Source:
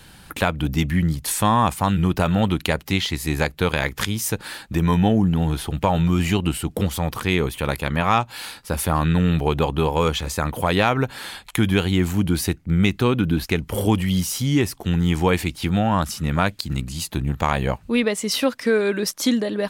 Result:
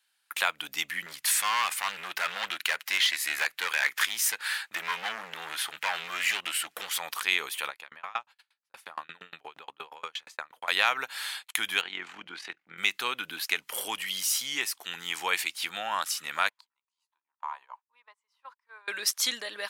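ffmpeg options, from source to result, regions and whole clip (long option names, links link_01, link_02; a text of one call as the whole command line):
ffmpeg -i in.wav -filter_complex "[0:a]asettb=1/sr,asplit=3[link_01][link_02][link_03];[link_01]atrim=end=1.064[link_04];[link_02]atrim=start=1.06:end=7,asetpts=PTS-STARTPTS,afade=type=in:duration=0.004:curve=qsin,afade=type=out:start_time=5.936:duration=0.004:curve=qsin,volume=20.5dB,asoftclip=hard,volume=-20.5dB,equalizer=frequency=1800:width_type=o:width=1.4:gain=7[link_05];[link_03]atrim=start=6.996[link_06];[link_04][link_05]acrossfade=duration=0.004:curve1=hsin:curve2=qsin[link_07];[link_07][link_06]acrossfade=duration=0.004:curve1=qsin:curve2=hsin,asettb=1/sr,asplit=3[link_08][link_09][link_10];[link_08]atrim=end=7.684[link_11];[link_09]atrim=start=7.68:end=10.68,asetpts=PTS-STARTPTS,afade=type=in:duration=0.004:curve=qsin,afade=type=out:start_time=2.996:duration=0.004:curve=qsin,lowpass=frequency=2100:poles=1,aeval=exprs='val(0)*pow(10,-32*if(lt(mod(8.5*n/s,1),2*abs(8.5)/1000),1-mod(8.5*n/s,1)/(2*abs(8.5)/1000),(mod(8.5*n/s,1)-2*abs(8.5)/1000)/(1-2*abs(8.5)/1000))/20)':channel_layout=same[link_12];[link_10]atrim=start=10.676[link_13];[link_11][link_12]acrossfade=duration=0.004:curve1=hsin:curve2=qsin[link_14];[link_14][link_13]acrossfade=duration=0.004:curve1=qsin:curve2=hsin,asettb=1/sr,asplit=3[link_15][link_16][link_17];[link_15]atrim=end=11.814[link_18];[link_16]atrim=start=11.81:end=12.78,asetpts=PTS-STARTPTS,afade=type=in:duration=0.004:curve=qsin,afade=type=out:start_time=0.966:duration=0.004:curve=qsin,highpass=110,lowpass=2600,tremolo=f=42:d=0.571[link_19];[link_17]atrim=start=12.776[link_20];[link_18][link_19]acrossfade=duration=0.004:curve1=hsin:curve2=qsin[link_21];[link_21][link_20]acrossfade=duration=0.004:curve1=qsin:curve2=hsin,asettb=1/sr,asplit=3[link_22][link_23][link_24];[link_22]atrim=end=16.494[link_25];[link_23]atrim=start=16.49:end=18.88,asetpts=PTS-STARTPTS,afade=type=in:duration=0.004:curve=qsin,afade=type=out:start_time=2.386:duration=0.004:curve=qsin,bandpass=frequency=970:width_type=q:width=9.1,aemphasis=mode=production:type=cd[link_26];[link_24]atrim=start=18.876[link_27];[link_25][link_26]acrossfade=duration=0.004:curve1=hsin:curve2=qsin[link_28];[link_28][link_27]acrossfade=duration=0.004:curve1=qsin:curve2=hsin,agate=range=-24dB:threshold=-40dB:ratio=16:detection=peak,highpass=1400" out.wav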